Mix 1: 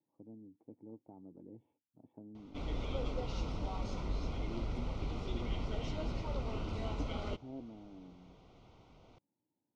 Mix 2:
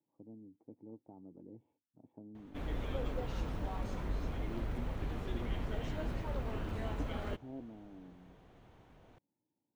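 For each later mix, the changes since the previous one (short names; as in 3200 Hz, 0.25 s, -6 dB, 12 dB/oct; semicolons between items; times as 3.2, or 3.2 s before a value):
background: remove Butterworth band-stop 1700 Hz, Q 3.2; master: remove synth low-pass 5300 Hz, resonance Q 2.3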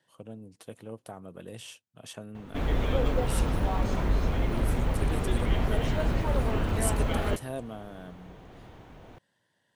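speech: remove vocal tract filter u; background +11.5 dB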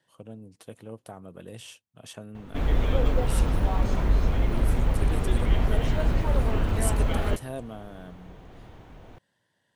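master: add low shelf 62 Hz +7 dB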